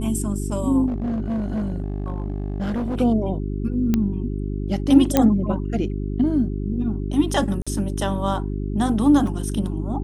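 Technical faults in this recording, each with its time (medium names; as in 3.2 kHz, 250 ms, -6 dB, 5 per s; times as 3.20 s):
hum 50 Hz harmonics 8 -26 dBFS
0.87–3.00 s: clipped -21 dBFS
3.94 s: pop -8 dBFS
5.17 s: pop -2 dBFS
7.62–7.67 s: dropout 46 ms
9.27 s: dropout 2.8 ms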